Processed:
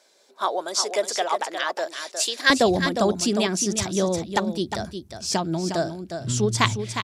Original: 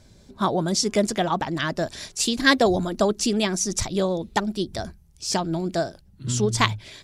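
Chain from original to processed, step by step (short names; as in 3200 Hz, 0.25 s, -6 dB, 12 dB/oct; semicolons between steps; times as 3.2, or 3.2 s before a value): HPF 450 Hz 24 dB/oct, from 2.5 s 70 Hz; echo 0.358 s -8 dB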